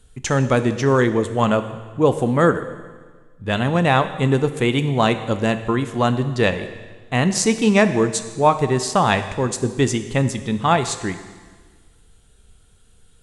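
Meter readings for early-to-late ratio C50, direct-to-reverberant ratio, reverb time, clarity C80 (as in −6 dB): 11.5 dB, 10.0 dB, 1.5 s, 13.0 dB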